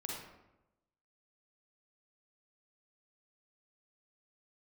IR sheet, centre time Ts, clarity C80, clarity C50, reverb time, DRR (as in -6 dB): 65 ms, 3.5 dB, -1.0 dB, 0.95 s, -2.5 dB